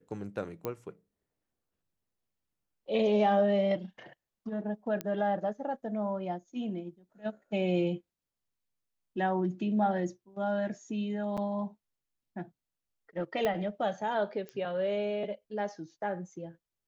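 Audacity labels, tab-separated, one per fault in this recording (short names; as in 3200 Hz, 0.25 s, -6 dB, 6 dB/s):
0.650000	0.650000	pop -20 dBFS
5.010000	5.010000	pop -18 dBFS
11.370000	11.380000	gap 6.6 ms
13.450000	13.450000	pop -17 dBFS
14.490000	14.490000	pop -28 dBFS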